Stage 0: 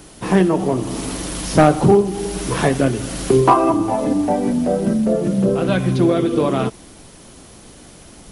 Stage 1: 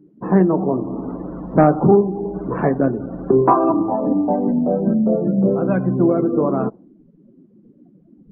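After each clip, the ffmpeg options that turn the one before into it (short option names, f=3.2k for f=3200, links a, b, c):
-af "lowpass=1.4k,lowshelf=f=130:t=q:w=1.5:g=-7.5,afftdn=nr=31:nf=-34,volume=-1dB"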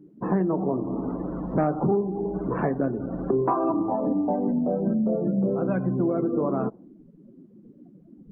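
-filter_complex "[0:a]asplit=2[a][b];[b]alimiter=limit=-9dB:level=0:latency=1:release=36,volume=-1dB[c];[a][c]amix=inputs=2:normalize=0,acompressor=threshold=-20dB:ratio=2,volume=-6dB"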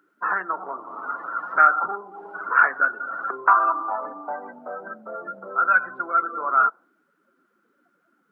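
-af "highpass=f=1.4k:t=q:w=15,volume=6.5dB"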